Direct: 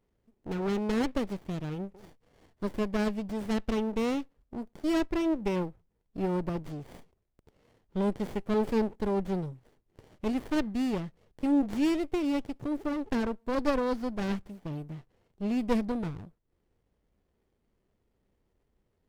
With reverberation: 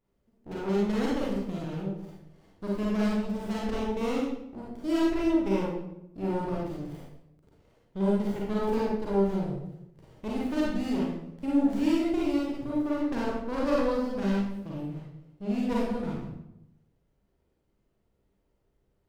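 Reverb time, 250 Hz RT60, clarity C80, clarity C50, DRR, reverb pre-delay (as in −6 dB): 0.85 s, 1.0 s, 4.0 dB, −1.0 dB, −5.0 dB, 35 ms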